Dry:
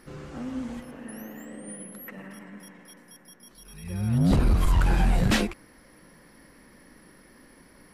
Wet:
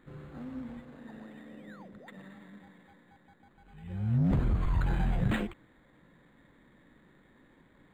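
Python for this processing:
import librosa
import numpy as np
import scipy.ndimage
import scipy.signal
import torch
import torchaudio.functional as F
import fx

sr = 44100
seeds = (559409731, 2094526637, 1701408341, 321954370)

y = fx.graphic_eq_10(x, sr, hz=(125, 2000, 4000), db=(6, 5, -6))
y = np.interp(np.arange(len(y)), np.arange(len(y))[::8], y[::8])
y = y * 10.0 ** (-8.5 / 20.0)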